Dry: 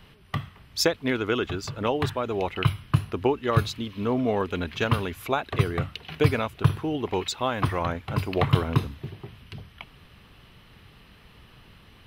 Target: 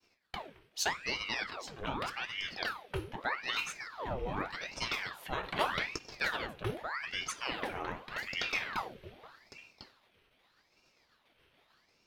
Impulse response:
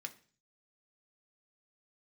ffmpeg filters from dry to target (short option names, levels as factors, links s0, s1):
-filter_complex "[0:a]agate=range=0.0224:threshold=0.00562:ratio=3:detection=peak[s0];[1:a]atrim=start_sample=2205,asetrate=48510,aresample=44100[s1];[s0][s1]afir=irnorm=-1:irlink=0,asettb=1/sr,asplit=3[s2][s3][s4];[s2]atrim=end=5.434[s5];[s3]atrim=start=5.43:end=5.99,asetpts=PTS-STARTPTS,afade=t=in:d=0.004:c=qsin,afade=t=out:st=0.556:d=0.004:c=qsin,acontrast=38[s6];[s4]atrim=start=5.986[s7];[s5][s6]acrossfade=d=0.004:c1=hsin:c2=qsin[s8];[s8][s7]acrossfade=d=0.004:c1=qsin:c2=hsin,aeval=exprs='val(0)*sin(2*PI*1400*n/s+1400*0.85/0.83*sin(2*PI*0.83*n/s))':c=same,volume=0.794"